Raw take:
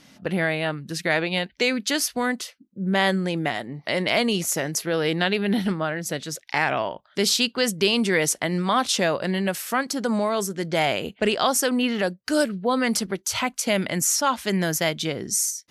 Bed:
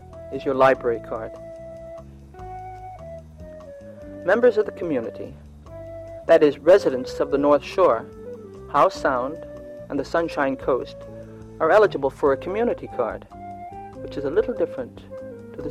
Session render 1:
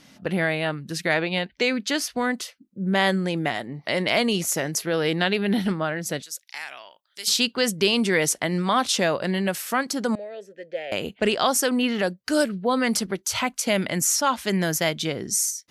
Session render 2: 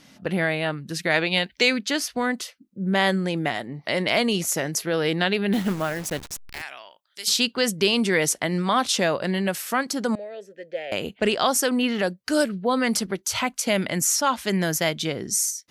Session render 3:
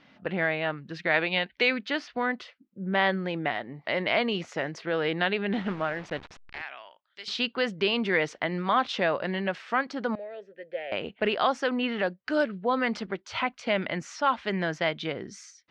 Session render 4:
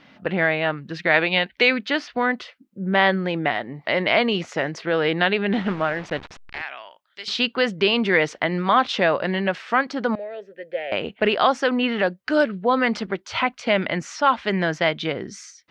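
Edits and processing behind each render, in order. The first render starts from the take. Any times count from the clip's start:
1.14–2.34 high shelf 7400 Hz -9 dB; 6.22–7.28 differentiator; 10.15–10.92 vowel filter e
1.14–1.79 high shelf 2500 Hz +9 dB; 5.53–6.62 level-crossing sampler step -33 dBFS
Bessel low-pass 2400 Hz, order 4; low shelf 430 Hz -8.5 dB
gain +6.5 dB

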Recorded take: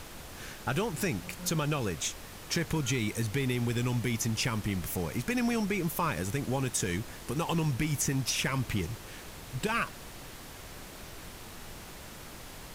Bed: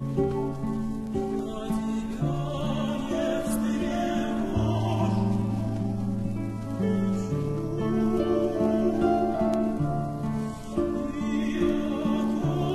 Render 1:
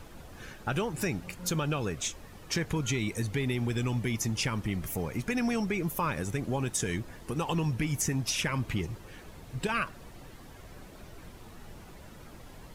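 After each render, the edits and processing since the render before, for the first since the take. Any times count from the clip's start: denoiser 10 dB, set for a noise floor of -46 dBFS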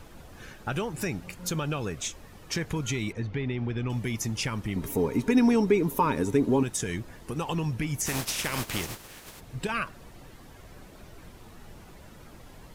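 3.12–3.9 air absorption 240 m; 4.76–6.63 small resonant body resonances 280/410/920/3800 Hz, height 14 dB, ringing for 50 ms; 8.05–9.39 spectral contrast lowered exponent 0.46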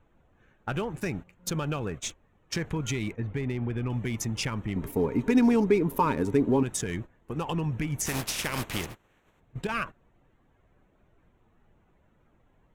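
Wiener smoothing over 9 samples; gate -36 dBFS, range -16 dB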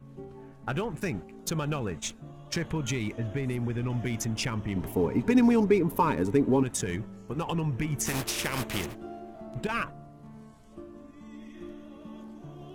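add bed -18.5 dB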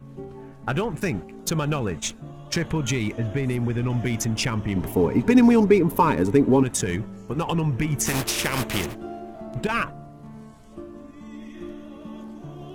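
gain +6 dB

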